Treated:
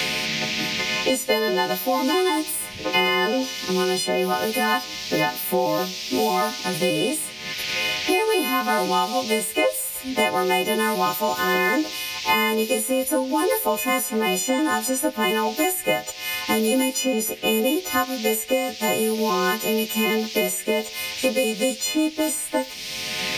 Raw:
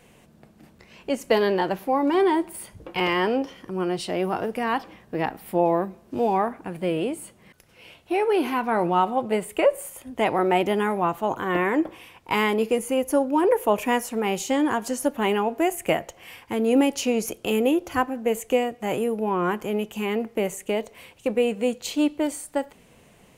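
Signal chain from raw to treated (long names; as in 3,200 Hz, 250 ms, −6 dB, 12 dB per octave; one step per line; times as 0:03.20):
every partial snapped to a pitch grid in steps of 3 semitones
noise in a band 2,100–5,900 Hz −43 dBFS
multiband upward and downward compressor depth 100%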